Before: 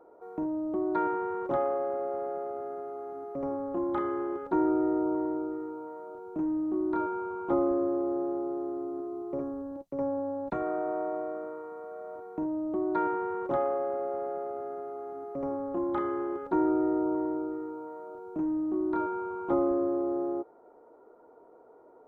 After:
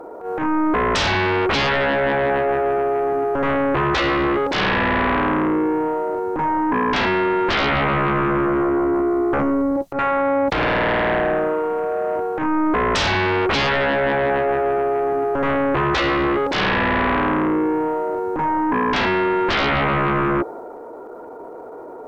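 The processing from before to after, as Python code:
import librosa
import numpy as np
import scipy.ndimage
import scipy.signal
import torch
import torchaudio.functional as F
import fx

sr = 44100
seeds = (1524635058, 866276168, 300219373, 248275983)

y = fx.fold_sine(x, sr, drive_db=17, ceiling_db=-15.5)
y = fx.transient(y, sr, attack_db=-12, sustain_db=3)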